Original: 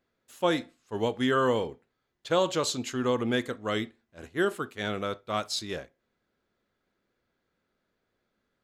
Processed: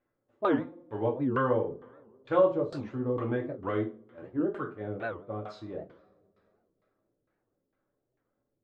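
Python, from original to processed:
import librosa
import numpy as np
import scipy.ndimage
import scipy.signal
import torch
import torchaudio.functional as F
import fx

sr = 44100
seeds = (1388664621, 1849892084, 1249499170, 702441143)

y = fx.rev_double_slope(x, sr, seeds[0], early_s=0.38, late_s=3.1, knee_db=-28, drr_db=-1.0)
y = fx.filter_lfo_lowpass(y, sr, shape='saw_down', hz=2.2, low_hz=370.0, high_hz=1900.0, q=0.89)
y = fx.record_warp(y, sr, rpm=78.0, depth_cents=250.0)
y = F.gain(torch.from_numpy(y), -4.5).numpy()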